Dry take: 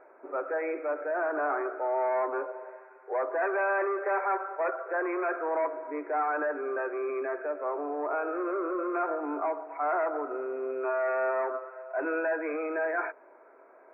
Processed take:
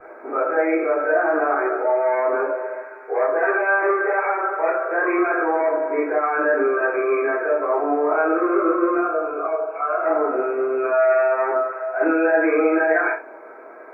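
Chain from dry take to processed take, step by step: peak limiter -27.5 dBFS, peak gain reduction 9 dB; 8.97–10.04 s: static phaser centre 1.3 kHz, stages 8; reverberation, pre-delay 3 ms, DRR -11.5 dB; trim -2.5 dB

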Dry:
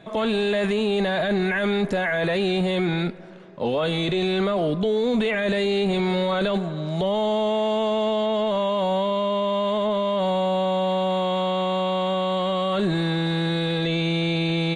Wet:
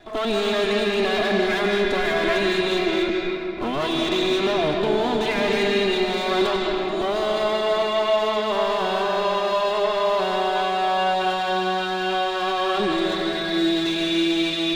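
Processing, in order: comb filter that takes the minimum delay 2.9 ms; on a send: treble shelf 2.4 kHz +10.5 dB + reverberation RT60 3.3 s, pre-delay 138 ms, DRR -0.5 dB

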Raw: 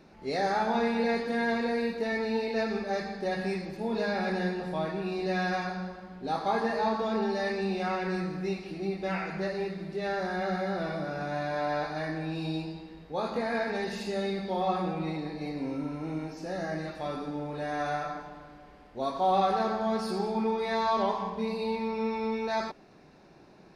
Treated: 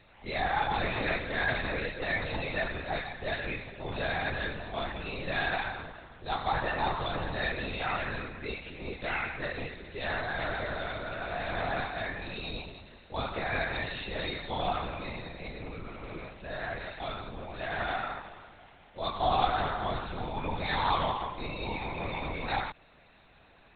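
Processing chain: tilt EQ +4.5 dB/octave; LPC vocoder at 8 kHz whisper

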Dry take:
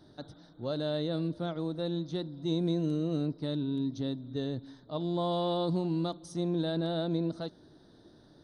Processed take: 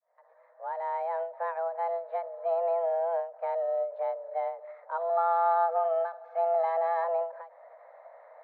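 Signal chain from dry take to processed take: fade-in on the opening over 1.39 s; 5.09–7.04 s: comb 2.2 ms, depth 90%; in parallel at -1 dB: compression, threshold -45 dBFS, peak gain reduction 18.5 dB; on the sum: mistuned SSB +330 Hz 200–2000 Hz; endings held to a fixed fall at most 140 dB/s; trim +2.5 dB

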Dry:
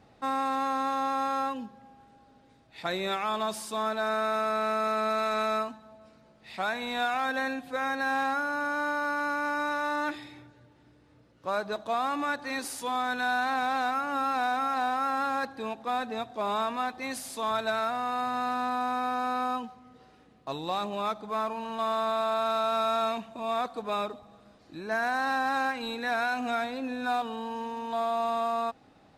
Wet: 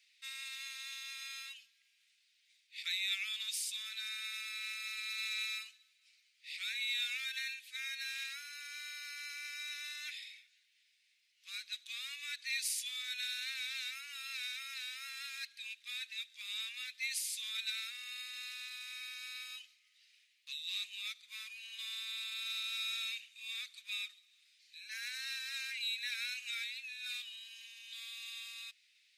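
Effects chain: elliptic high-pass 2.2 kHz, stop band 60 dB; trim +2.5 dB

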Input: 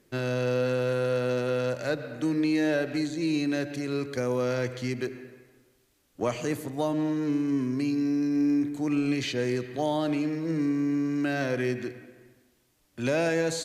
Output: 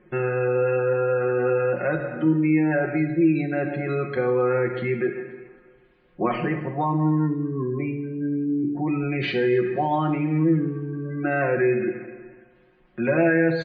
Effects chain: Chebyshev low-pass 2 kHz, order 2; spectral gate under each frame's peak -30 dB strong; comb 5.6 ms, depth 88%; in parallel at +1 dB: peak limiter -25 dBFS, peak gain reduction 12 dB; on the sum: feedback echo behind a high-pass 267 ms, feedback 43%, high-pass 1.6 kHz, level -23 dB; on a send at -5 dB: reverberation, pre-delay 3 ms

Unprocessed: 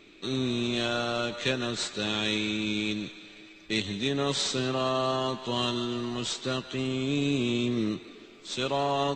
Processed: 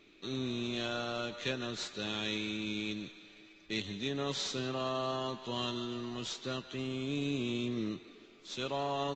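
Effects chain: resampled via 16 kHz; trim -7.5 dB

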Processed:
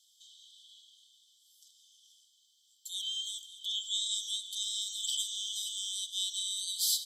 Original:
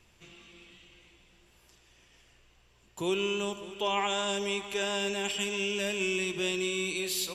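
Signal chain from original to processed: brick-wall FIR high-pass 2.9 kHz; speed mistake 24 fps film run at 25 fps; trim +3.5 dB

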